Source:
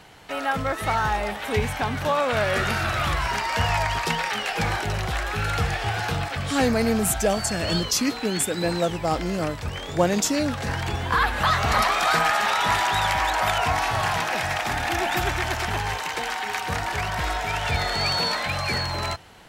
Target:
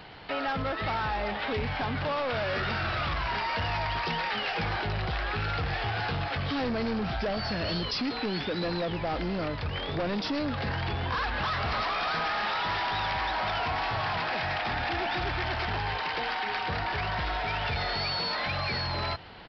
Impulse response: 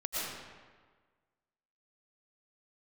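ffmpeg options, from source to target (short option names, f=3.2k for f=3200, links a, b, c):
-af "aresample=11025,asoftclip=type=tanh:threshold=-24.5dB,aresample=44100,acompressor=threshold=-30dB:ratio=6,volume=2dB"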